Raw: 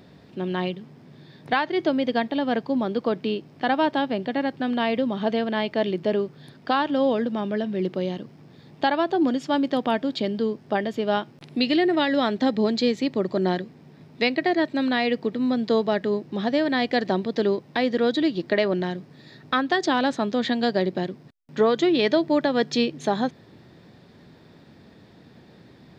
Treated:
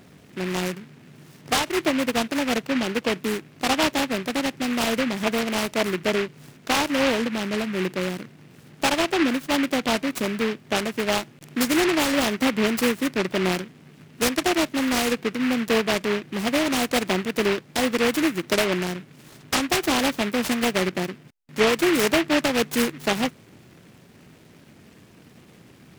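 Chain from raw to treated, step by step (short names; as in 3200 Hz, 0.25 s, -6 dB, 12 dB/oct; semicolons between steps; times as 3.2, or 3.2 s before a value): noise-modulated delay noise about 1800 Hz, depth 0.18 ms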